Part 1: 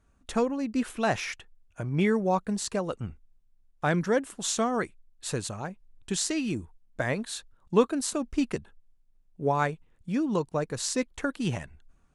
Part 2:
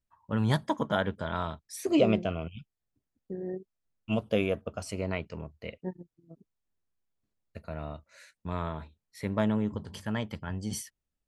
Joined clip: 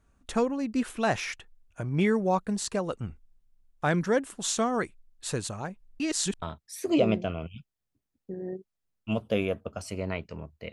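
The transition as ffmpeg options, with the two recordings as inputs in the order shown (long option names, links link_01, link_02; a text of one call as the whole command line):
ffmpeg -i cue0.wav -i cue1.wav -filter_complex "[0:a]apad=whole_dur=10.72,atrim=end=10.72,asplit=2[link_01][link_02];[link_01]atrim=end=6.002[link_03];[link_02]atrim=start=5.998:end=6.422,asetpts=PTS-STARTPTS,areverse[link_04];[1:a]atrim=start=1.428:end=5.73[link_05];[link_03][link_04]acrossfade=duration=0.004:curve1=hsin:curve2=hsin[link_06];[link_06][link_05]acrossfade=duration=0.004:curve1=hsin:curve2=hsin" out.wav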